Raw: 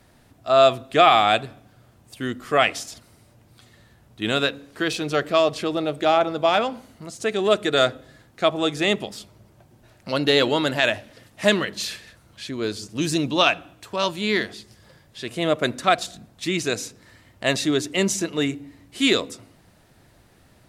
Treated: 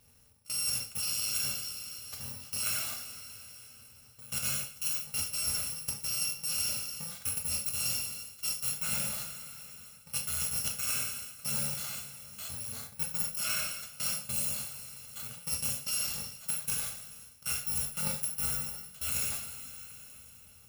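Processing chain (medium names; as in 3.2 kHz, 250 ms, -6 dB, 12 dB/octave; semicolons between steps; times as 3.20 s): bit-reversed sample order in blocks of 128 samples; level held to a coarse grid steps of 22 dB; two-slope reverb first 0.59 s, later 4.2 s, from -22 dB, DRR 0.5 dB; reverse; compression 12:1, threshold -31 dBFS, peak gain reduction 16 dB; reverse; trim +1.5 dB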